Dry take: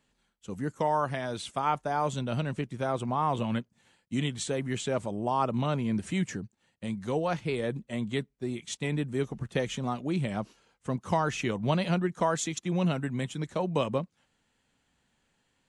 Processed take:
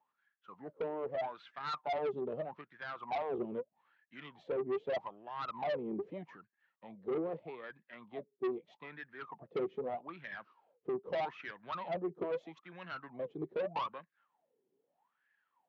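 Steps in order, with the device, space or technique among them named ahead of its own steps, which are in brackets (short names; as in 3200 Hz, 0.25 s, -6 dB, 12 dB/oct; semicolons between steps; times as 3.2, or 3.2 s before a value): wah-wah guitar rig (wah 0.8 Hz 380–1700 Hz, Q 16; tube stage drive 45 dB, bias 0.25; speaker cabinet 91–4500 Hz, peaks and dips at 160 Hz +5 dB, 320 Hz +3 dB, 1500 Hz -6 dB); gain +13.5 dB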